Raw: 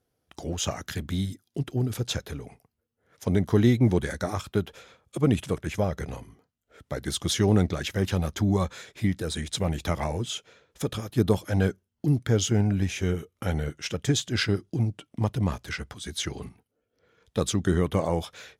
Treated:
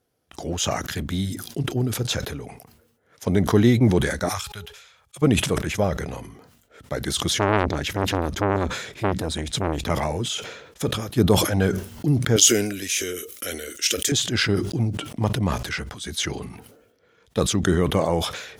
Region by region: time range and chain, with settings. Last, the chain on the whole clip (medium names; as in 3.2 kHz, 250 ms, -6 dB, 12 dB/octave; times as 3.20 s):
4.29–5.22 s: amplifier tone stack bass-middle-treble 10-0-10 + de-hum 417.8 Hz, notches 2 + tape noise reduction on one side only decoder only
7.30–9.90 s: tone controls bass +6 dB, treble -2 dB + transformer saturation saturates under 1.1 kHz
12.36–14.12 s: RIAA curve recording + static phaser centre 360 Hz, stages 4
whole clip: bass shelf 130 Hz -5.5 dB; decay stretcher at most 61 dB/s; trim +4.5 dB